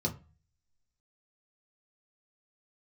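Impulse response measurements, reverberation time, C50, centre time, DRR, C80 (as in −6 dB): 0.35 s, 15.5 dB, 10 ms, −1.0 dB, 21.0 dB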